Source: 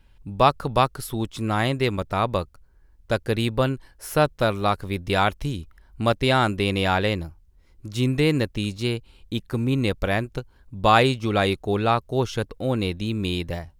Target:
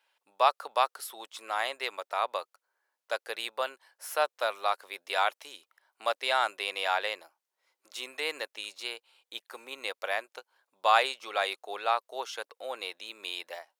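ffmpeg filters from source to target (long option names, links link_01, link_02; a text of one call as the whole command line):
ffmpeg -i in.wav -af "highpass=frequency=600:width=0.5412,highpass=frequency=600:width=1.3066,volume=-5dB" out.wav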